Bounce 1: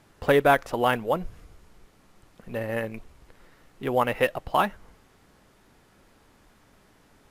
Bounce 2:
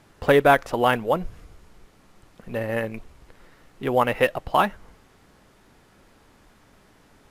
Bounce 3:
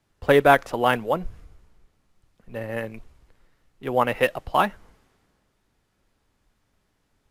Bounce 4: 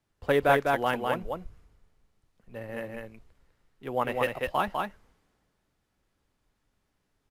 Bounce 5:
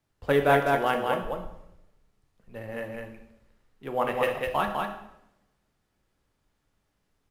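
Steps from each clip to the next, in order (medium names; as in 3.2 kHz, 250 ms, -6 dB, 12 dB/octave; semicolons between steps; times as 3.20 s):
treble shelf 11 kHz -3.5 dB; trim +3 dB
three bands expanded up and down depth 40%; trim -2.5 dB
delay 201 ms -3.5 dB; trim -7.5 dB
reverberation RT60 0.80 s, pre-delay 12 ms, DRR 5.5 dB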